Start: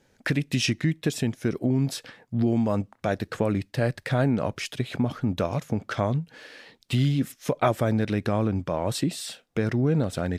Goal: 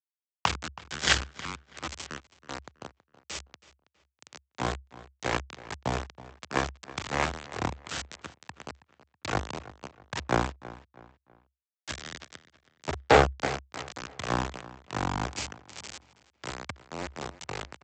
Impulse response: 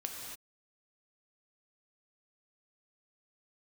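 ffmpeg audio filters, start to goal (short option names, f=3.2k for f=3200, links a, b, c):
-filter_complex "[0:a]highpass=640,asetrate=25666,aresample=44100,aeval=exprs='0.299*(cos(1*acos(clip(val(0)/0.299,-1,1)))-cos(1*PI/2))+0.00188*(cos(2*acos(clip(val(0)/0.299,-1,1)))-cos(2*PI/2))+0.075*(cos(7*acos(clip(val(0)/0.299,-1,1)))-cos(7*PI/2))+0.0237*(cos(8*acos(clip(val(0)/0.299,-1,1)))-cos(8*PI/2))':c=same,aresample=16000,aeval=exprs='val(0)*gte(abs(val(0)),0.0299)':c=same,aresample=44100,afreqshift=66,asplit=2[a][b];[b]adelay=324,lowpass=f=3.6k:p=1,volume=-17.5dB,asplit=2[c][d];[d]adelay=324,lowpass=f=3.6k:p=1,volume=0.37,asplit=2[e][f];[f]adelay=324,lowpass=f=3.6k:p=1,volume=0.37[g];[a][c][e][g]amix=inputs=4:normalize=0,volume=5dB"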